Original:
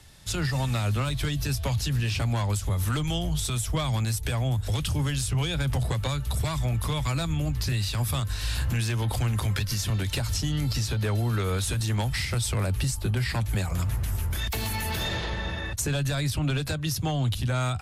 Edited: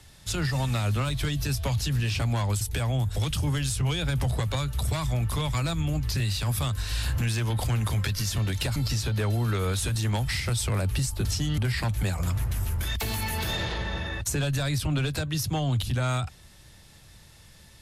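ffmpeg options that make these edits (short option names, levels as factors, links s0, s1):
-filter_complex "[0:a]asplit=5[s0][s1][s2][s3][s4];[s0]atrim=end=2.612[s5];[s1]atrim=start=4.128:end=10.282[s6];[s2]atrim=start=10.608:end=13.102[s7];[s3]atrim=start=10.278:end=10.612[s8];[s4]atrim=start=13.098[s9];[s5][s6]acrossfade=d=0.004:c1=hsin:c2=hsin[s10];[s10][s7]acrossfade=d=0.004:c1=hsin:c2=hsin[s11];[s11][s8]acrossfade=d=0.004:c1=hsin:c2=hsin[s12];[s12][s9]acrossfade=d=0.004:c1=hsin:c2=hsin"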